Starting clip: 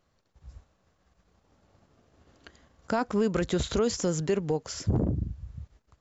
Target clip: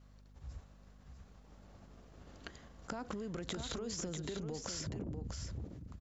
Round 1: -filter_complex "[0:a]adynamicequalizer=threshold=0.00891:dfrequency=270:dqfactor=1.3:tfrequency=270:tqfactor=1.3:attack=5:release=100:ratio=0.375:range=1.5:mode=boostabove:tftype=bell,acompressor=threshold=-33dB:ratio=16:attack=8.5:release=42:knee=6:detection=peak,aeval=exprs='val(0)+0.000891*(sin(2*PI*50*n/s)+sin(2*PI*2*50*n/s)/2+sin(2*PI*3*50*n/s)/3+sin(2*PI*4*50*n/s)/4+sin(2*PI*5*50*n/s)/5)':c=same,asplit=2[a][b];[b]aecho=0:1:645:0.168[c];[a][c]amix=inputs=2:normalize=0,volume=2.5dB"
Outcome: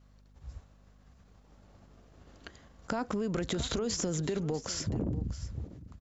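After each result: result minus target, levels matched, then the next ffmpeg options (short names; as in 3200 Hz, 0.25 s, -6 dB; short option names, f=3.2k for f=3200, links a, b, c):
compressor: peak gain reduction -10 dB; echo-to-direct -8.5 dB
-filter_complex "[0:a]adynamicequalizer=threshold=0.00891:dfrequency=270:dqfactor=1.3:tfrequency=270:tqfactor=1.3:attack=5:release=100:ratio=0.375:range=1.5:mode=boostabove:tftype=bell,acompressor=threshold=-43.5dB:ratio=16:attack=8.5:release=42:knee=6:detection=peak,aeval=exprs='val(0)+0.000891*(sin(2*PI*50*n/s)+sin(2*PI*2*50*n/s)/2+sin(2*PI*3*50*n/s)/3+sin(2*PI*4*50*n/s)/4+sin(2*PI*5*50*n/s)/5)':c=same,asplit=2[a][b];[b]aecho=0:1:645:0.168[c];[a][c]amix=inputs=2:normalize=0,volume=2.5dB"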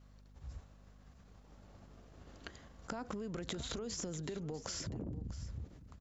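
echo-to-direct -8.5 dB
-filter_complex "[0:a]adynamicequalizer=threshold=0.00891:dfrequency=270:dqfactor=1.3:tfrequency=270:tqfactor=1.3:attack=5:release=100:ratio=0.375:range=1.5:mode=boostabove:tftype=bell,acompressor=threshold=-43.5dB:ratio=16:attack=8.5:release=42:knee=6:detection=peak,aeval=exprs='val(0)+0.000891*(sin(2*PI*50*n/s)+sin(2*PI*2*50*n/s)/2+sin(2*PI*3*50*n/s)/3+sin(2*PI*4*50*n/s)/4+sin(2*PI*5*50*n/s)/5)':c=same,asplit=2[a][b];[b]aecho=0:1:645:0.447[c];[a][c]amix=inputs=2:normalize=0,volume=2.5dB"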